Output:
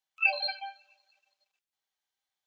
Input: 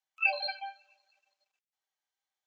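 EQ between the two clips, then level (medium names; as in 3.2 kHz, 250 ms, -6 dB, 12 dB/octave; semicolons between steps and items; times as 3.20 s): peaking EQ 3.7 kHz +4 dB 1 oct; 0.0 dB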